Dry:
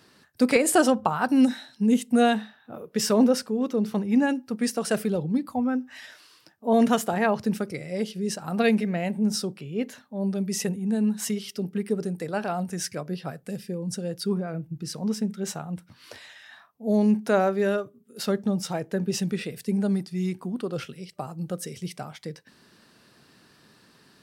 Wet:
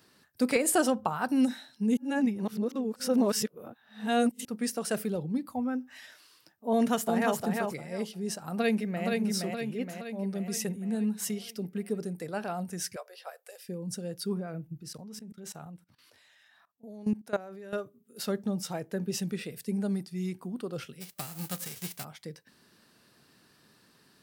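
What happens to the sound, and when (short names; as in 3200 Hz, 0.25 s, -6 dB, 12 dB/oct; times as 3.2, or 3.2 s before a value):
1.97–4.45 reverse
6.72–7.38 echo throw 0.35 s, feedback 20%, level -3.5 dB
8.49–9.07 echo throw 0.47 s, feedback 55%, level -3 dB
12.96–13.69 steep high-pass 490 Hz 48 dB/oct
14.8–17.73 level quantiser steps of 19 dB
21–22.03 spectral whitening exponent 0.3
whole clip: high shelf 11000 Hz +10 dB; gain -6 dB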